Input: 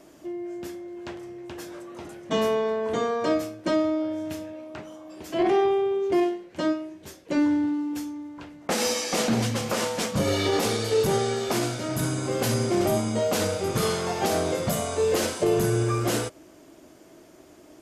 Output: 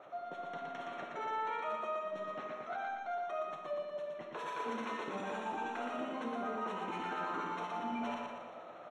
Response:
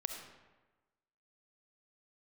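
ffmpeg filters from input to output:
-filter_complex "[0:a]highpass=71,highshelf=frequency=4100:gain=-10.5,areverse,acompressor=threshold=-37dB:ratio=8,areverse,acrossover=split=510[link_01][link_02];[link_01]aeval=exprs='val(0)*(1-0.7/2+0.7/2*cos(2*PI*6.3*n/s))':channel_layout=same[link_03];[link_02]aeval=exprs='val(0)*(1-0.7/2-0.7/2*cos(2*PI*6.3*n/s))':channel_layout=same[link_04];[link_03][link_04]amix=inputs=2:normalize=0,aresample=16000,adynamicsmooth=sensitivity=5.5:basefreq=1700,aresample=44100,asuperstop=centerf=2400:order=8:qfactor=4.3,aecho=1:1:236|472|708|944|1180|1416|1652:0.668|0.341|0.174|0.0887|0.0452|0.0231|0.0118[link_05];[1:a]atrim=start_sample=2205[link_06];[link_05][link_06]afir=irnorm=-1:irlink=0,asetrate=88200,aresample=44100,volume=2.5dB"

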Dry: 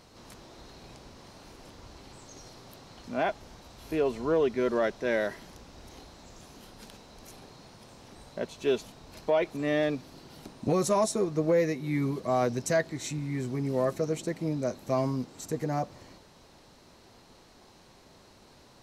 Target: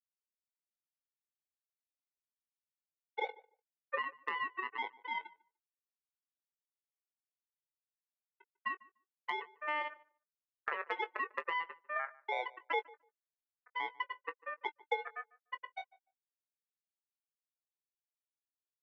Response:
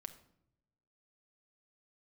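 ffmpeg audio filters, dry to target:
-filter_complex "[0:a]bandreject=frequency=990:width=5.5,afftfilt=real='re*gte(hypot(re,im),0.316)':imag='im*gte(hypot(re,im),0.316)':win_size=1024:overlap=0.75,equalizer=frequency=6000:width_type=o:width=2.9:gain=-11.5,alimiter=level_in=2dB:limit=-24dB:level=0:latency=1:release=411,volume=-2dB,acompressor=threshold=-37dB:ratio=2,aeval=exprs='0.0335*(cos(1*acos(clip(val(0)/0.0335,-1,1)))-cos(1*PI/2))+0.0106*(cos(3*acos(clip(val(0)/0.0335,-1,1)))-cos(3*PI/2))+0.000531*(cos(8*acos(clip(val(0)/0.0335,-1,1)))-cos(8*PI/2))':channel_layout=same,aeval=exprs='val(0)*sin(2*PI*1500*n/s)':channel_layout=same,highpass=frequency=480:width_type=q:width=5.7,asplit=2[link_01][link_02];[link_02]adelay=20,volume=-11.5dB[link_03];[link_01][link_03]amix=inputs=2:normalize=0,asplit=2[link_04][link_05];[link_05]adelay=148,lowpass=frequency=1500:poles=1,volume=-21dB,asplit=2[link_06][link_07];[link_07]adelay=148,lowpass=frequency=1500:poles=1,volume=0.16[link_08];[link_06][link_08]amix=inputs=2:normalize=0[link_09];[link_04][link_09]amix=inputs=2:normalize=0,volume=3.5dB"

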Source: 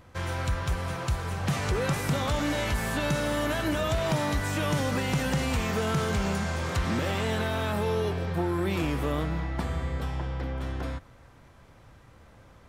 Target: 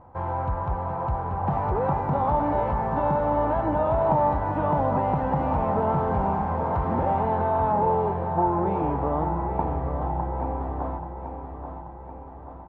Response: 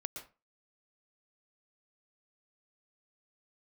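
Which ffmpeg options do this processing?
-filter_complex "[0:a]lowpass=frequency=870:width_type=q:width=5.4,asplit=2[link_01][link_02];[link_02]aecho=0:1:833|1666|2499|3332|4165|4998:0.376|0.203|0.11|0.0592|0.032|0.0173[link_03];[link_01][link_03]amix=inputs=2:normalize=0"

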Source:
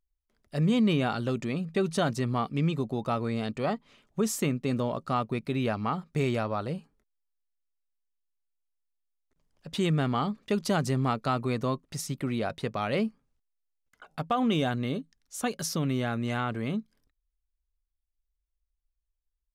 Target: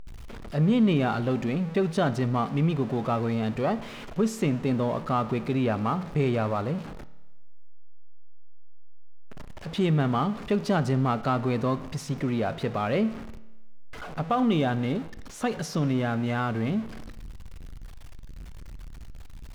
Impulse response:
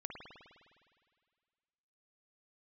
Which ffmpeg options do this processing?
-filter_complex "[0:a]aeval=exprs='val(0)+0.5*0.0188*sgn(val(0))':channel_layout=same,aemphasis=mode=reproduction:type=75kf,asplit=2[link_01][link_02];[1:a]atrim=start_sample=2205,asetrate=83790,aresample=44100[link_03];[link_02][link_03]afir=irnorm=-1:irlink=0,volume=-2.5dB[link_04];[link_01][link_04]amix=inputs=2:normalize=0"

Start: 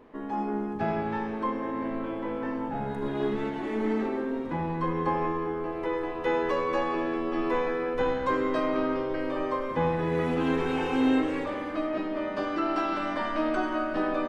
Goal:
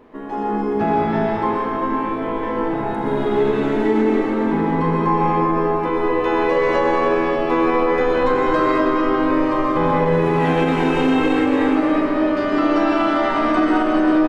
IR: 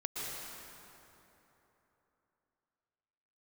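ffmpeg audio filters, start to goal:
-filter_complex "[0:a]asplit=2[link_01][link_02];[link_02]adelay=41,volume=-12.5dB[link_03];[link_01][link_03]amix=inputs=2:normalize=0[link_04];[1:a]atrim=start_sample=2205[link_05];[link_04][link_05]afir=irnorm=-1:irlink=0,alimiter=level_in=15dB:limit=-1dB:release=50:level=0:latency=1,volume=-7dB"

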